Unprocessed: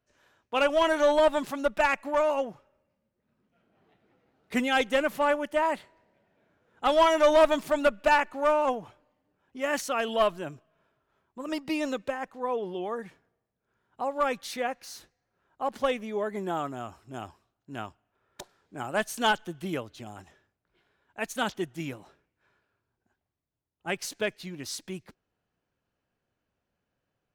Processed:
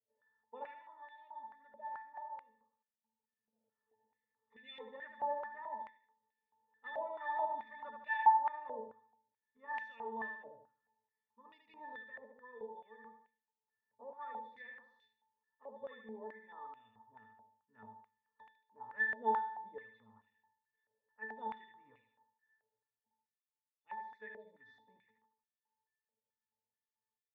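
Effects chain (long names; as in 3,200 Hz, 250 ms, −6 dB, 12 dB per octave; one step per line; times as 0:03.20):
0:00.71–0:04.63: downward compressor 1.5 to 1, threshold −57 dBFS, peak gain reduction 14 dB
resonances in every octave A, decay 0.42 s
repeating echo 76 ms, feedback 41%, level −4.5 dB
band-pass on a step sequencer 4.6 Hz 620–2,600 Hz
level +13.5 dB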